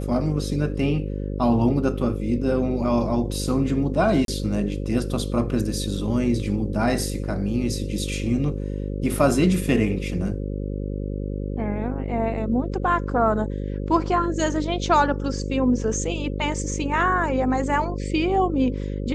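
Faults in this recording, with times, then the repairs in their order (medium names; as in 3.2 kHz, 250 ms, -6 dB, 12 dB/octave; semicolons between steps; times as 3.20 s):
buzz 50 Hz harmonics 11 -28 dBFS
4.25–4.28 s: dropout 32 ms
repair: de-hum 50 Hz, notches 11; interpolate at 4.25 s, 32 ms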